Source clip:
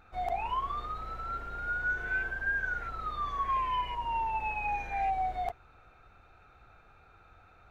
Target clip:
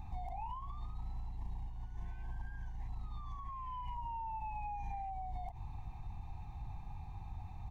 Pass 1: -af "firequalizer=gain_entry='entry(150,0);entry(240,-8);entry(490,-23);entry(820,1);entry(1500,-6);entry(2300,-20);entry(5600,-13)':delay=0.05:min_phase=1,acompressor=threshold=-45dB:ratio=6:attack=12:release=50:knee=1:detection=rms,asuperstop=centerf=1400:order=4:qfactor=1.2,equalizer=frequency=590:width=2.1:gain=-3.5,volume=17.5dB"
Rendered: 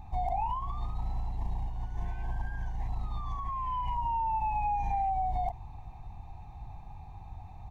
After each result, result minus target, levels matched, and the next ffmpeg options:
downward compressor: peak gain reduction −9 dB; 500 Hz band +3.0 dB
-af "firequalizer=gain_entry='entry(150,0);entry(240,-8);entry(490,-23);entry(820,1);entry(1500,-6);entry(2300,-20);entry(5600,-13)':delay=0.05:min_phase=1,acompressor=threshold=-55.5dB:ratio=6:attack=12:release=50:knee=1:detection=rms,asuperstop=centerf=1400:order=4:qfactor=1.2,equalizer=frequency=590:width=2.1:gain=-3.5,volume=17.5dB"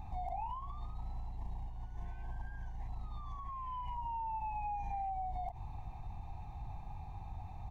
500 Hz band +4.0 dB
-af "firequalizer=gain_entry='entry(150,0);entry(240,-8);entry(490,-23);entry(820,1);entry(1500,-6);entry(2300,-20);entry(5600,-13)':delay=0.05:min_phase=1,acompressor=threshold=-55.5dB:ratio=6:attack=12:release=50:knee=1:detection=rms,asuperstop=centerf=1400:order=4:qfactor=1.2,equalizer=frequency=590:width=2.1:gain=-13.5,volume=17.5dB"

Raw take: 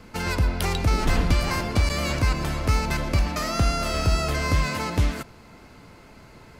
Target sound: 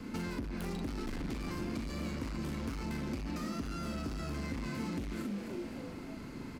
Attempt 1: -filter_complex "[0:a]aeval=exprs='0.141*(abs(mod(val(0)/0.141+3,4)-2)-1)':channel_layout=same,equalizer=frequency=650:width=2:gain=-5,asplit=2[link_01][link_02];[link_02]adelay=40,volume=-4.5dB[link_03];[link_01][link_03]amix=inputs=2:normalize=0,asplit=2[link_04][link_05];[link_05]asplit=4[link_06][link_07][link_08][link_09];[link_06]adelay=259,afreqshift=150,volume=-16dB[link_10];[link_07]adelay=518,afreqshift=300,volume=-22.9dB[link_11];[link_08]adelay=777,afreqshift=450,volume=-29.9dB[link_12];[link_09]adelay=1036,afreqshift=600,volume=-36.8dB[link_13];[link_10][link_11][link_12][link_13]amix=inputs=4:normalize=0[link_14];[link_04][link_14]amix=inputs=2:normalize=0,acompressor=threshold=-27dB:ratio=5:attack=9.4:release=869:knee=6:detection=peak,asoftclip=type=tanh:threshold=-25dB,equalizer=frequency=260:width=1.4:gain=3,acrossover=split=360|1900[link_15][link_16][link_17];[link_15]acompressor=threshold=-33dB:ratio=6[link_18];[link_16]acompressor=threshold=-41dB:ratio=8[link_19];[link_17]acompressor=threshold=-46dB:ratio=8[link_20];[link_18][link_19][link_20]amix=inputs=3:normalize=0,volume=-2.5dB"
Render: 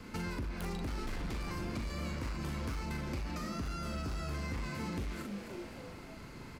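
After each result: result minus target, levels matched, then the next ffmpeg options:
soft clipping: distortion −8 dB; 250 Hz band −3.0 dB
-filter_complex "[0:a]aeval=exprs='0.141*(abs(mod(val(0)/0.141+3,4)-2)-1)':channel_layout=same,equalizer=frequency=650:width=2:gain=-5,asplit=2[link_01][link_02];[link_02]adelay=40,volume=-4.5dB[link_03];[link_01][link_03]amix=inputs=2:normalize=0,asplit=2[link_04][link_05];[link_05]asplit=4[link_06][link_07][link_08][link_09];[link_06]adelay=259,afreqshift=150,volume=-16dB[link_10];[link_07]adelay=518,afreqshift=300,volume=-22.9dB[link_11];[link_08]adelay=777,afreqshift=450,volume=-29.9dB[link_12];[link_09]adelay=1036,afreqshift=600,volume=-36.8dB[link_13];[link_10][link_11][link_12][link_13]amix=inputs=4:normalize=0[link_14];[link_04][link_14]amix=inputs=2:normalize=0,acompressor=threshold=-27dB:ratio=5:attack=9.4:release=869:knee=6:detection=peak,asoftclip=type=tanh:threshold=-32dB,equalizer=frequency=260:width=1.4:gain=3,acrossover=split=360|1900[link_15][link_16][link_17];[link_15]acompressor=threshold=-33dB:ratio=6[link_18];[link_16]acompressor=threshold=-41dB:ratio=8[link_19];[link_17]acompressor=threshold=-46dB:ratio=8[link_20];[link_18][link_19][link_20]amix=inputs=3:normalize=0,volume=-2.5dB"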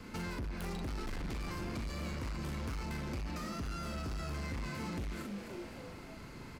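250 Hz band −3.0 dB
-filter_complex "[0:a]aeval=exprs='0.141*(abs(mod(val(0)/0.141+3,4)-2)-1)':channel_layout=same,equalizer=frequency=650:width=2:gain=-5,asplit=2[link_01][link_02];[link_02]adelay=40,volume=-4.5dB[link_03];[link_01][link_03]amix=inputs=2:normalize=0,asplit=2[link_04][link_05];[link_05]asplit=4[link_06][link_07][link_08][link_09];[link_06]adelay=259,afreqshift=150,volume=-16dB[link_10];[link_07]adelay=518,afreqshift=300,volume=-22.9dB[link_11];[link_08]adelay=777,afreqshift=450,volume=-29.9dB[link_12];[link_09]adelay=1036,afreqshift=600,volume=-36.8dB[link_13];[link_10][link_11][link_12][link_13]amix=inputs=4:normalize=0[link_14];[link_04][link_14]amix=inputs=2:normalize=0,acompressor=threshold=-27dB:ratio=5:attack=9.4:release=869:knee=6:detection=peak,asoftclip=type=tanh:threshold=-32dB,equalizer=frequency=260:width=1.4:gain=12.5,acrossover=split=360|1900[link_15][link_16][link_17];[link_15]acompressor=threshold=-33dB:ratio=6[link_18];[link_16]acompressor=threshold=-41dB:ratio=8[link_19];[link_17]acompressor=threshold=-46dB:ratio=8[link_20];[link_18][link_19][link_20]amix=inputs=3:normalize=0,volume=-2.5dB"

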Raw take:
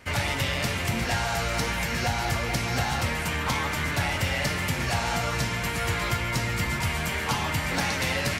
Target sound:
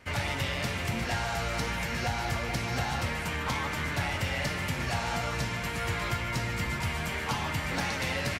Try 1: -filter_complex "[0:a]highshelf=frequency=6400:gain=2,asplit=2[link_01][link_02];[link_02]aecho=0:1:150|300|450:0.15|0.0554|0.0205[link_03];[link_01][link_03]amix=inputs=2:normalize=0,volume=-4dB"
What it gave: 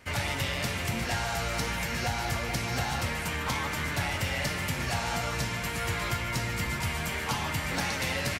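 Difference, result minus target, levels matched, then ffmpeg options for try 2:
8,000 Hz band +3.0 dB
-filter_complex "[0:a]highshelf=frequency=6400:gain=-5,asplit=2[link_01][link_02];[link_02]aecho=0:1:150|300|450:0.15|0.0554|0.0205[link_03];[link_01][link_03]amix=inputs=2:normalize=0,volume=-4dB"

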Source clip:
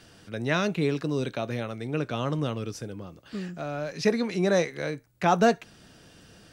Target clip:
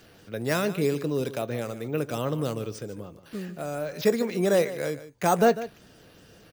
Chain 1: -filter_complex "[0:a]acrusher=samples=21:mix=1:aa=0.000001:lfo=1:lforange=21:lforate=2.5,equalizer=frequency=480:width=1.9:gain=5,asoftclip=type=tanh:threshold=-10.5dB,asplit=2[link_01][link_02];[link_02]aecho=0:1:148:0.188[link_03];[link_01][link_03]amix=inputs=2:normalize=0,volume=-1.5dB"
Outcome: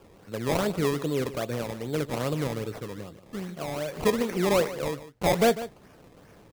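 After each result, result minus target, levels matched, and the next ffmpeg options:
sample-and-hold swept by an LFO: distortion +13 dB; soft clipping: distortion +13 dB
-filter_complex "[0:a]acrusher=samples=4:mix=1:aa=0.000001:lfo=1:lforange=4:lforate=2.5,equalizer=frequency=480:width=1.9:gain=5,asoftclip=type=tanh:threshold=-10.5dB,asplit=2[link_01][link_02];[link_02]aecho=0:1:148:0.188[link_03];[link_01][link_03]amix=inputs=2:normalize=0,volume=-1.5dB"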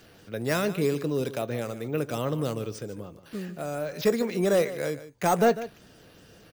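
soft clipping: distortion +13 dB
-filter_complex "[0:a]acrusher=samples=4:mix=1:aa=0.000001:lfo=1:lforange=4:lforate=2.5,equalizer=frequency=480:width=1.9:gain=5,asoftclip=type=tanh:threshold=-3dB,asplit=2[link_01][link_02];[link_02]aecho=0:1:148:0.188[link_03];[link_01][link_03]amix=inputs=2:normalize=0,volume=-1.5dB"

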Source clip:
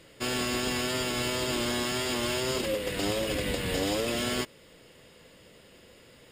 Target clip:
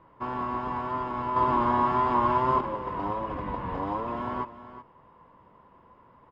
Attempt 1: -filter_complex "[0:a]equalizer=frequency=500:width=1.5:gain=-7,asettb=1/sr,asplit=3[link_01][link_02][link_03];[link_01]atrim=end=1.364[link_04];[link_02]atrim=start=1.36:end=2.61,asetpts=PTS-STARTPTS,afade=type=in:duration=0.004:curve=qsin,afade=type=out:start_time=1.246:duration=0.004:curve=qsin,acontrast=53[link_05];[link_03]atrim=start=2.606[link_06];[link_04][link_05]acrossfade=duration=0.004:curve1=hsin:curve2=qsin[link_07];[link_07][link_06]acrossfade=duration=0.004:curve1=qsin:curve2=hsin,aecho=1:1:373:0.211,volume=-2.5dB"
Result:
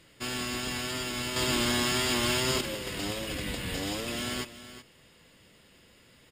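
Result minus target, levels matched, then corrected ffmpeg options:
1,000 Hz band −11.5 dB
-filter_complex "[0:a]lowpass=frequency=1000:width_type=q:width=11,equalizer=frequency=500:width=1.5:gain=-7,asettb=1/sr,asplit=3[link_01][link_02][link_03];[link_01]atrim=end=1.364[link_04];[link_02]atrim=start=1.36:end=2.61,asetpts=PTS-STARTPTS,afade=type=in:duration=0.004:curve=qsin,afade=type=out:start_time=1.246:duration=0.004:curve=qsin,acontrast=53[link_05];[link_03]atrim=start=2.606[link_06];[link_04][link_05]acrossfade=duration=0.004:curve1=hsin:curve2=qsin[link_07];[link_07][link_06]acrossfade=duration=0.004:curve1=qsin:curve2=hsin,aecho=1:1:373:0.211,volume=-2.5dB"

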